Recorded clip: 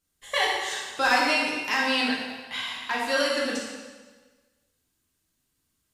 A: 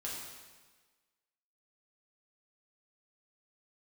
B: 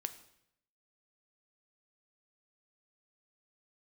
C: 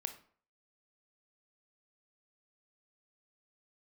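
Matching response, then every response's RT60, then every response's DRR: A; 1.4, 0.75, 0.50 seconds; −5.5, 9.5, 7.5 decibels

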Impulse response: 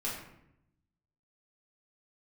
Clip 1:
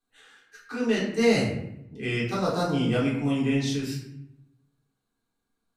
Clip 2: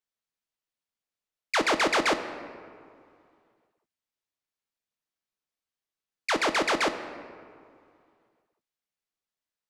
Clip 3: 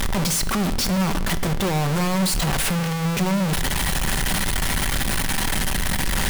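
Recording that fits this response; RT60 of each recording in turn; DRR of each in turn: 1; 0.80 s, 2.3 s, non-exponential decay; −8.5, 7.5, 9.5 decibels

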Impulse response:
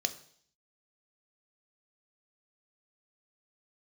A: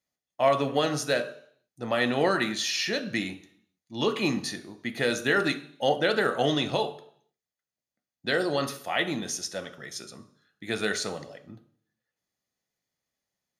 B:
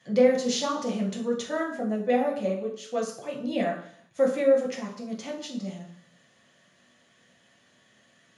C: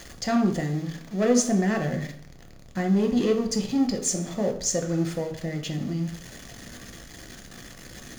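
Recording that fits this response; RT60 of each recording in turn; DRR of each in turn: A; 0.60, 0.60, 0.60 seconds; 7.5, −2.5, 2.5 decibels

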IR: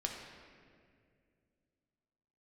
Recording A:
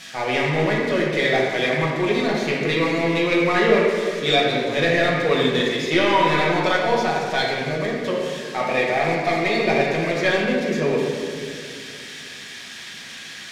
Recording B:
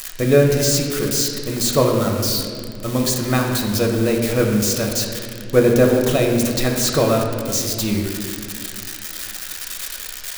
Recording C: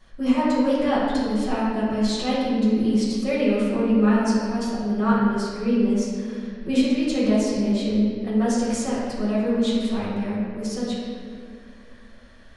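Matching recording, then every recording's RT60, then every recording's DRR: B; 2.2, 2.2, 2.2 seconds; −4.5, 0.0, −9.5 decibels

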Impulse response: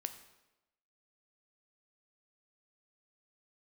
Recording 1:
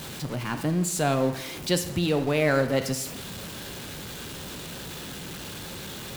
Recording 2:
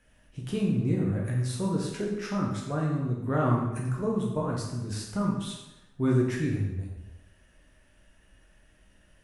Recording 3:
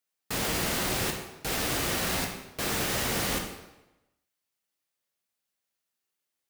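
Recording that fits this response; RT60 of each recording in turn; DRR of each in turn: 1; 1.0, 1.0, 1.0 seconds; 8.5, −3.0, 1.5 decibels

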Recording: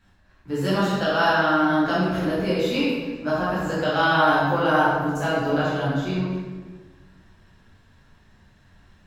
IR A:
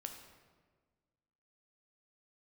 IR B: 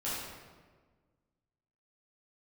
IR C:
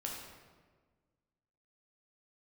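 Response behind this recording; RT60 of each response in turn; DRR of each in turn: B; 1.5, 1.5, 1.5 seconds; 4.0, −10.5, −2.0 decibels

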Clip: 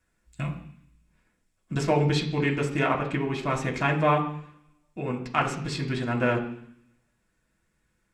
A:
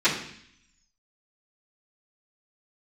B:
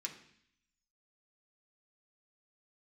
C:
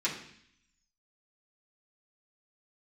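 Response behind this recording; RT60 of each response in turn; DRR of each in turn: B; 0.65, 0.65, 0.65 seconds; −17.5, 0.0, −8.5 decibels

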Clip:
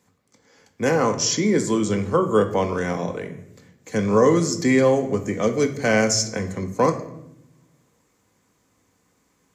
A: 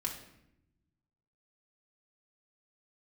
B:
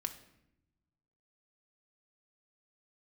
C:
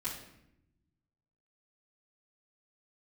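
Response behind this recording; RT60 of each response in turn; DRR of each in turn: B; 0.80, 0.85, 0.80 seconds; −1.5, 5.5, −11.0 decibels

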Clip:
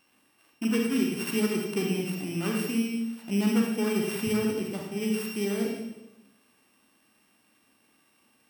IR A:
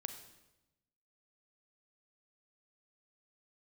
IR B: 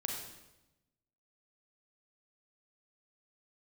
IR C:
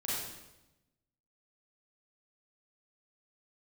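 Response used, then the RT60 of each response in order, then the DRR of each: B; 0.95, 0.95, 0.95 seconds; 7.5, 0.0, −8.5 decibels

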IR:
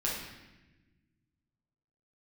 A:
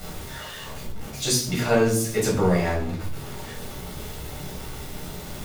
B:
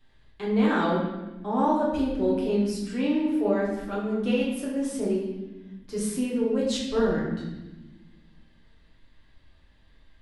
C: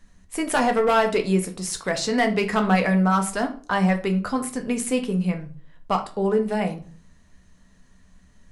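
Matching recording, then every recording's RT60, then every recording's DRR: B; 0.60, 1.1, 0.45 seconds; −4.5, −6.5, 4.5 decibels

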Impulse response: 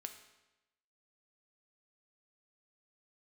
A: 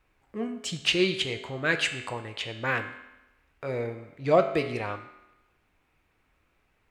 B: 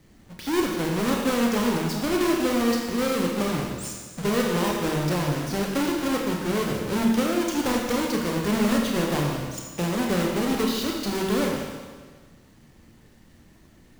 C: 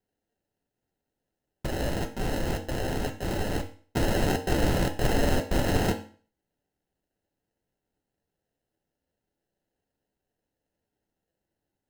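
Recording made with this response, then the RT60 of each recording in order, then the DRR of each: A; 1.0, 1.5, 0.40 seconds; 5.5, −0.5, 4.0 decibels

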